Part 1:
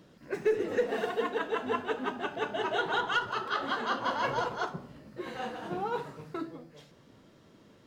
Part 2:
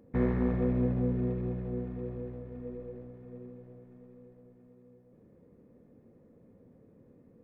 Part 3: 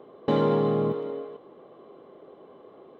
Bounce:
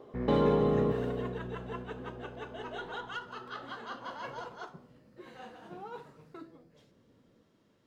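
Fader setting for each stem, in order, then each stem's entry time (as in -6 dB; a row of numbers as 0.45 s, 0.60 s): -11.0 dB, -8.0 dB, -3.5 dB; 0.00 s, 0.00 s, 0.00 s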